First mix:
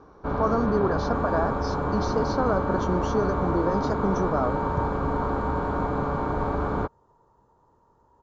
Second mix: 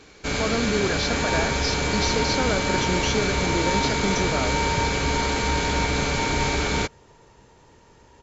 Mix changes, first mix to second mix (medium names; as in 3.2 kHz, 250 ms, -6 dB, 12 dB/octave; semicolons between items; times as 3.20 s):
first sound: remove distance through air 390 m; second sound +11.5 dB; master: add resonant high shelf 1.6 kHz +12.5 dB, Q 3